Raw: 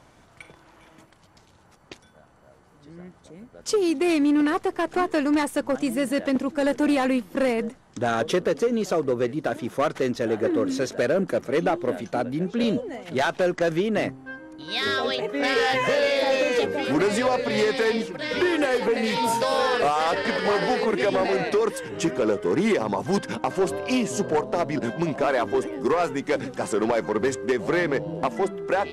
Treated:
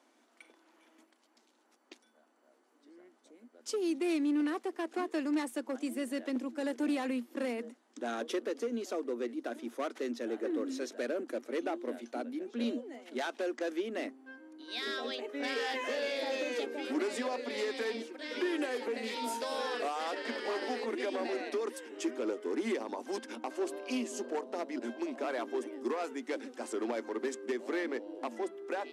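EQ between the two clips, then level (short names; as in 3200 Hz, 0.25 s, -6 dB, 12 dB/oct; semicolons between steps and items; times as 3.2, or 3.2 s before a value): rippled Chebyshev high-pass 230 Hz, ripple 3 dB; bell 980 Hz -6.5 dB 1.8 oct; -7.5 dB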